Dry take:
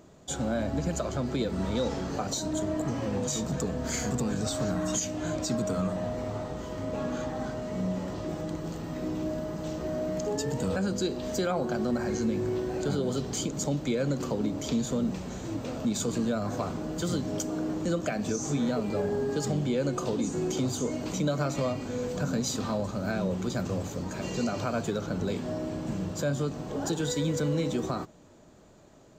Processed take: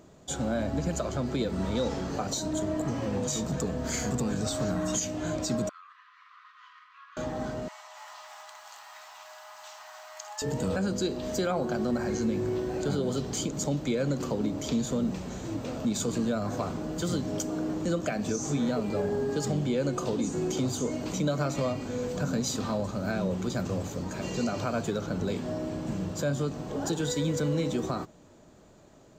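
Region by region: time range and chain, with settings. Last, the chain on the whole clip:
5.69–7.17 s: compression 4:1, threshold -33 dBFS + brick-wall FIR high-pass 1 kHz + distance through air 320 m
7.68–10.42 s: steep high-pass 800 Hz 48 dB/octave + bit-crushed delay 294 ms, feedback 35%, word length 10-bit, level -8 dB
whole clip: none

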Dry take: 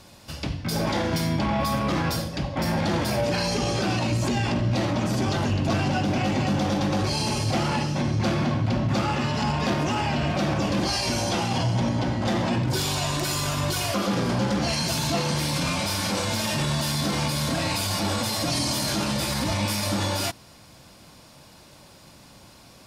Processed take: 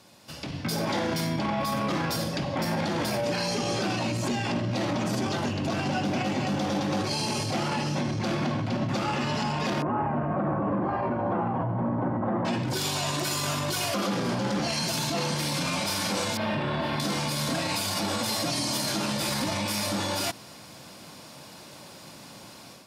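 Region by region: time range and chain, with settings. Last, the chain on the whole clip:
9.82–12.45 s: low-pass 1.4 kHz 24 dB/octave + peaking EQ 1.1 kHz +4.5 dB 0.21 oct
16.37–17.00 s: distance through air 450 m + doubling 38 ms -3 dB
whole clip: peak limiter -23.5 dBFS; level rider gain up to 9.5 dB; high-pass 140 Hz 12 dB/octave; trim -5 dB

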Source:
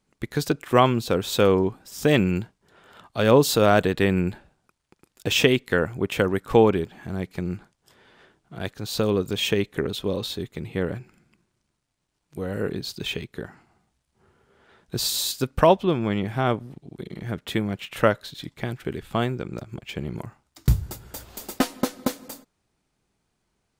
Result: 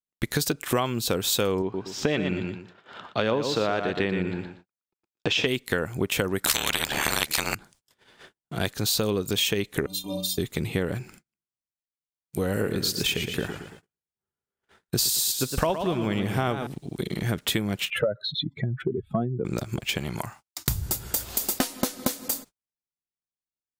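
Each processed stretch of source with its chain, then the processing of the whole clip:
1.62–5.46 s: high-pass 190 Hz 6 dB/octave + distance through air 190 m + feedback delay 119 ms, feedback 23%, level -7.5 dB
6.44–7.55 s: transient shaper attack +4 dB, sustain -1 dB + ring modulator 37 Hz + spectrum-flattening compressor 10:1
9.86–10.38 s: treble shelf 4.5 kHz +8.5 dB + static phaser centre 440 Hz, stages 6 + inharmonic resonator 87 Hz, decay 0.55 s, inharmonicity 0.03
12.47–16.67 s: peaking EQ 3.8 kHz -4 dB 0.35 oct + modulated delay 112 ms, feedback 48%, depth 118 cents, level -10 dB
17.90–19.45 s: spectral contrast enhancement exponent 2.9 + high-pass 110 Hz
19.97–20.76 s: high-pass 45 Hz + resonant low shelf 580 Hz -6.5 dB, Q 1.5
whole clip: gate -53 dBFS, range -40 dB; treble shelf 3.8 kHz +11.5 dB; compression 6:1, threshold -29 dBFS; trim +6.5 dB

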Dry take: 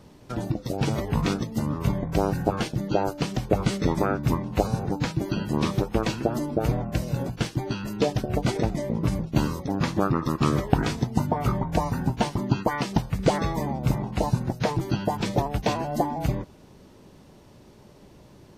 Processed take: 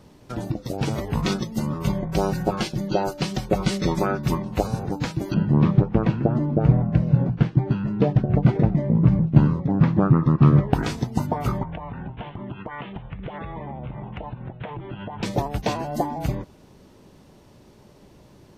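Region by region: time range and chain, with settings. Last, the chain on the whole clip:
1.24–4.54 s: comb 5.4 ms, depth 48% + dynamic bell 4.4 kHz, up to +4 dB, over -44 dBFS, Q 0.89
5.34–10.73 s: low-pass 2 kHz + peaking EQ 150 Hz +12 dB 1.1 oct
11.63–15.23 s: steep low-pass 3.4 kHz 72 dB/octave + peaking EQ 270 Hz -5.5 dB 0.87 oct + compression 10:1, threshold -29 dBFS
whole clip: none

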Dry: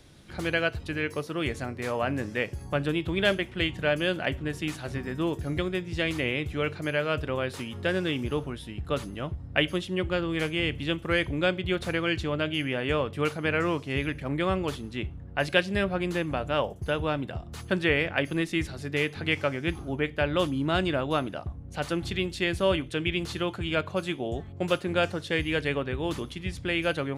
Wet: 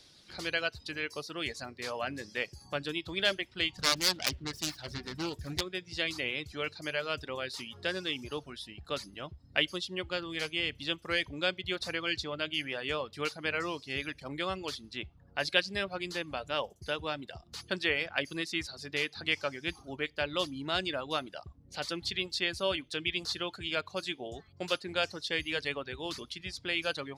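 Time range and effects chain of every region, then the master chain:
3.77–5.61 s: self-modulated delay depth 0.7 ms + bass shelf 160 Hz +8.5 dB
whole clip: bass shelf 260 Hz -9.5 dB; reverb removal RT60 0.59 s; peaking EQ 4.7 kHz +14 dB 0.9 oct; trim -5.5 dB

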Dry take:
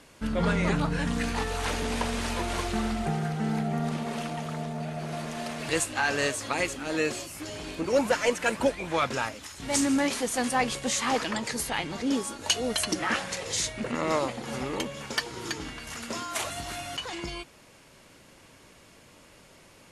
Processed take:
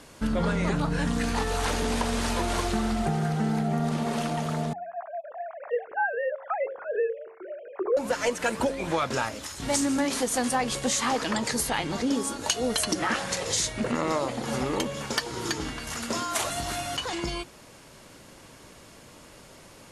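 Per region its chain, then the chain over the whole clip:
4.73–7.97 s: formants replaced by sine waves + low-pass 1.6 kHz 24 dB/octave + hum notches 50/100/150/200/250/300/350/400/450 Hz
whole clip: peaking EQ 2.4 kHz -4 dB 0.92 oct; de-hum 90.47 Hz, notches 7; compression 5:1, threshold -28 dBFS; trim +5.5 dB

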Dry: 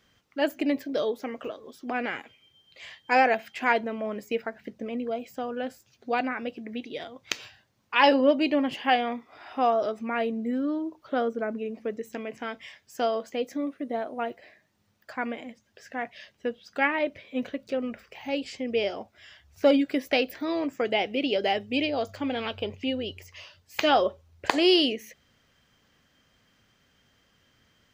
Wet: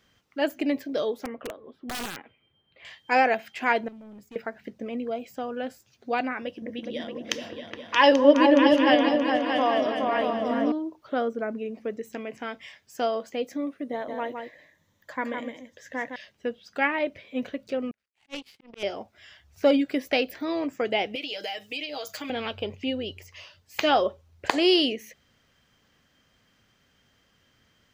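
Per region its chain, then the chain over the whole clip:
1.25–2.85 s: distance through air 470 m + integer overflow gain 26.5 dB
3.88–4.36 s: amplifier tone stack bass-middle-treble 10-0-1 + waveshaping leveller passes 3
6.41–10.72 s: rippled EQ curve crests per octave 1.2, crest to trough 7 dB + delay with an opening low-pass 209 ms, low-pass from 400 Hz, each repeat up 2 oct, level 0 dB
13.92–16.16 s: rippled EQ curve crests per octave 1.1, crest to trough 9 dB + delay 161 ms -5.5 dB
17.91–18.83 s: FFT filter 310 Hz 0 dB, 840 Hz -4 dB, 4.2 kHz +6 dB, 11 kHz -17 dB + slow attack 102 ms + power-law waveshaper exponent 2
21.15–22.30 s: tilt EQ +4 dB/octave + comb 6.4 ms, depth 67% + compression, threshold -30 dBFS
whole clip: none

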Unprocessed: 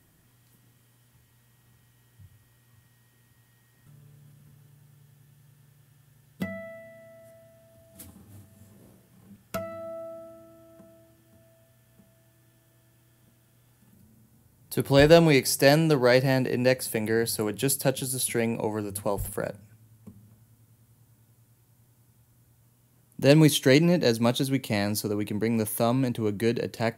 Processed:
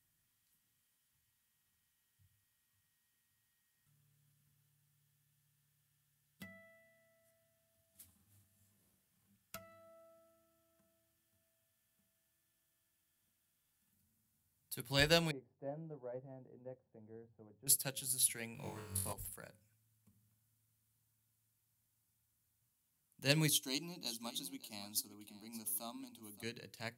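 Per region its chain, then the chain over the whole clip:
15.31–17.67 s: four-pole ladder low-pass 850 Hz, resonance 30% + doubling 18 ms -11.5 dB
18.54–19.13 s: companding laws mixed up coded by A + bass shelf 140 Hz +9.5 dB + flutter echo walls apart 3.6 m, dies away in 0.82 s
23.49–26.43 s: static phaser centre 480 Hz, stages 6 + delay 573 ms -13 dB
whole clip: amplifier tone stack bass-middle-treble 5-5-5; hum notches 60/120/180/240/300/360/420/480/540 Hz; upward expansion 1.5:1, over -49 dBFS; trim +3 dB

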